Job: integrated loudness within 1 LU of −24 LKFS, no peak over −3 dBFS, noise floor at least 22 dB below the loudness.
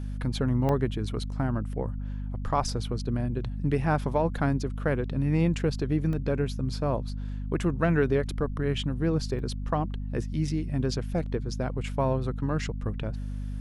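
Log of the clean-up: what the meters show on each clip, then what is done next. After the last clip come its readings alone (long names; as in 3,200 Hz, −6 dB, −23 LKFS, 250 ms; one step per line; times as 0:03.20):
number of dropouts 3; longest dropout 1.6 ms; mains hum 50 Hz; hum harmonics up to 250 Hz; level of the hum −30 dBFS; integrated loudness −29.0 LKFS; sample peak −11.5 dBFS; target loudness −24.0 LKFS
→ repair the gap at 0:00.69/0:06.13/0:09.39, 1.6 ms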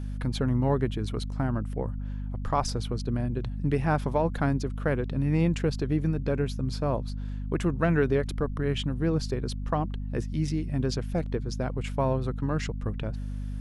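number of dropouts 0; mains hum 50 Hz; hum harmonics up to 250 Hz; level of the hum −30 dBFS
→ hum removal 50 Hz, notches 5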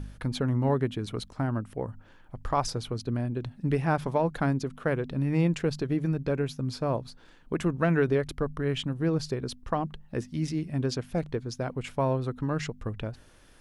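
mains hum none found; integrated loudness −30.0 LKFS; sample peak −12.5 dBFS; target loudness −24.0 LKFS
→ level +6 dB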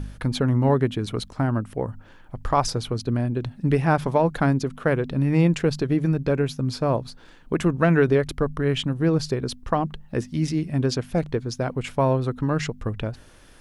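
integrated loudness −24.0 LKFS; sample peak −6.5 dBFS; background noise floor −49 dBFS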